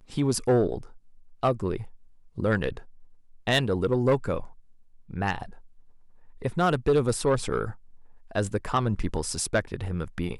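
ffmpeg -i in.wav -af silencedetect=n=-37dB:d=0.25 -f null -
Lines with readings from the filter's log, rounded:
silence_start: 0.86
silence_end: 1.43 | silence_duration: 0.57
silence_start: 1.87
silence_end: 2.38 | silence_duration: 0.51
silence_start: 2.81
silence_end: 3.47 | silence_duration: 0.66
silence_start: 4.47
silence_end: 5.10 | silence_duration: 0.63
silence_start: 5.54
silence_end: 6.41 | silence_duration: 0.88
silence_start: 7.74
silence_end: 8.31 | silence_duration: 0.57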